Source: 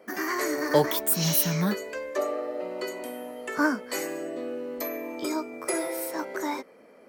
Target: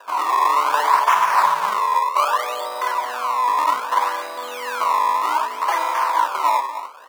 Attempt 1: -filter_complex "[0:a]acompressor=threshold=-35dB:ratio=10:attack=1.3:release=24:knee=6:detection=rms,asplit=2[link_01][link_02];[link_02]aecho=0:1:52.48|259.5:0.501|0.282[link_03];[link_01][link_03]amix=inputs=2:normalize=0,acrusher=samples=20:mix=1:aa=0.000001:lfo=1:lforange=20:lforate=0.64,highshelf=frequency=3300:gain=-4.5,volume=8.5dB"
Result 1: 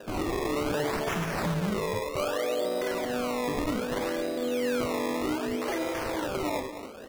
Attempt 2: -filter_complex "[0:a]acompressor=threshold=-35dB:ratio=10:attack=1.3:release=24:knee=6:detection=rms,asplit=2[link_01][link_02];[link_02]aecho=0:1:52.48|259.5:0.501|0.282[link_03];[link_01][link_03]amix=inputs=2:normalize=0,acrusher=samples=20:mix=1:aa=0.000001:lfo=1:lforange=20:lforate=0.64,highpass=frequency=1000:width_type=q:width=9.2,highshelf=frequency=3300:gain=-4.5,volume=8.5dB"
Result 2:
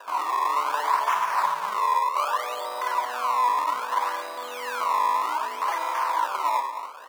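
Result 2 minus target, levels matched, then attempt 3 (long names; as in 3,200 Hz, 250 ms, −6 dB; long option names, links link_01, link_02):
downward compressor: peak gain reduction +8 dB
-filter_complex "[0:a]acompressor=threshold=-26dB:ratio=10:attack=1.3:release=24:knee=6:detection=rms,asplit=2[link_01][link_02];[link_02]aecho=0:1:52.48|259.5:0.501|0.282[link_03];[link_01][link_03]amix=inputs=2:normalize=0,acrusher=samples=20:mix=1:aa=0.000001:lfo=1:lforange=20:lforate=0.64,highpass=frequency=1000:width_type=q:width=9.2,highshelf=frequency=3300:gain=-4.5,volume=8.5dB"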